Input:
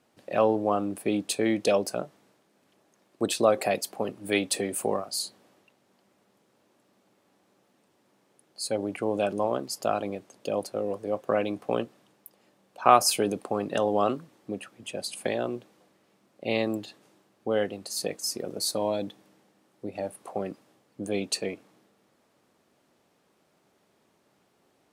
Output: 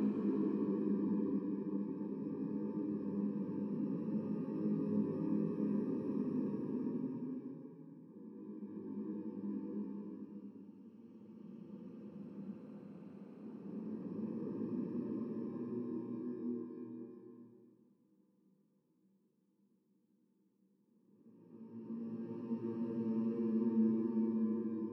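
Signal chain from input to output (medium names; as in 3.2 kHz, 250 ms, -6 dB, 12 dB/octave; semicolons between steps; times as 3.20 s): bit-reversed sample order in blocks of 64 samples; ladder band-pass 260 Hz, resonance 40%; Paulstretch 6.8×, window 0.50 s, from 13.15 s; trim +6 dB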